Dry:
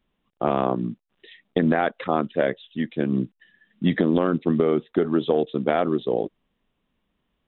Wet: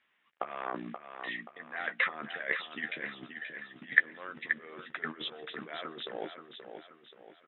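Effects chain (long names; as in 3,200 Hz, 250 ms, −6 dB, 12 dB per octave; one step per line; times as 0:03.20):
compressor whose output falls as the input rises −27 dBFS, ratio −0.5
resonant band-pass 1,900 Hz, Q 2.7
double-tracking delay 13 ms −8 dB
repeating echo 529 ms, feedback 42%, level −8 dB
level +6 dB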